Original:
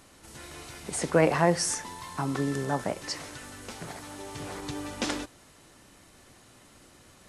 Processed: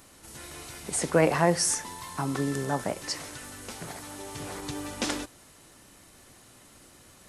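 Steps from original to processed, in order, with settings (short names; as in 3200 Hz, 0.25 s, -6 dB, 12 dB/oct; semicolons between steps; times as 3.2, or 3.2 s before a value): high shelf 10000 Hz +10 dB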